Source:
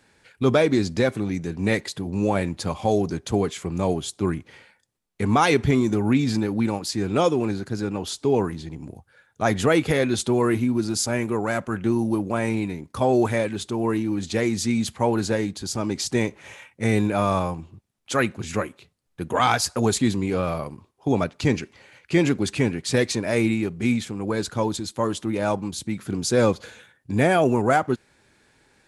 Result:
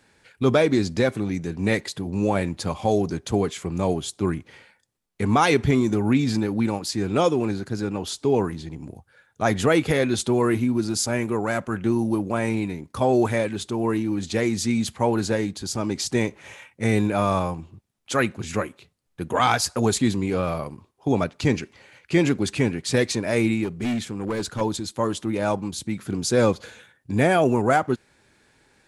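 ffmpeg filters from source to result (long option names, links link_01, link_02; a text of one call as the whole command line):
ffmpeg -i in.wav -filter_complex "[0:a]asettb=1/sr,asplit=3[link_01][link_02][link_03];[link_01]atrim=end=23.644[link_04];[link_02]atrim=start=23.64:end=24.61,asetpts=PTS-STARTPTS,afade=type=in:duration=0.004:curve=qsin,afade=type=out:start_time=0.966:duration=0.004:curve=qsin,volume=21.5dB,asoftclip=hard,volume=-21.5dB[link_05];[link_03]atrim=start=24.606[link_06];[link_04][link_05]acrossfade=duration=0.004:curve1=hsin:curve2=qsin[link_07];[link_07][link_06]acrossfade=duration=0.004:curve1=qsin:curve2=hsin" out.wav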